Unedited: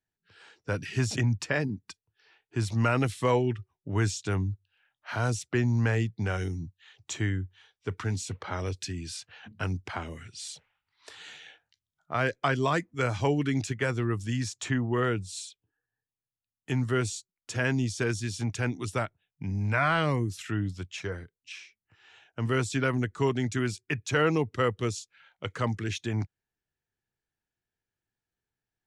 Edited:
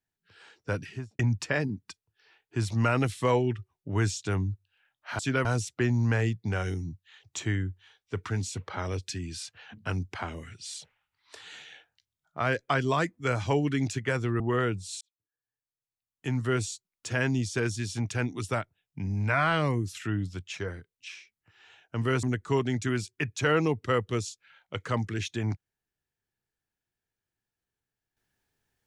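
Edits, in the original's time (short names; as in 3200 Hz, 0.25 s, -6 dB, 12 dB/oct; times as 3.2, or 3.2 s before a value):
0.7–1.19 studio fade out
14.14–14.84 cut
15.45–17.01 fade in
22.67–22.93 move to 5.19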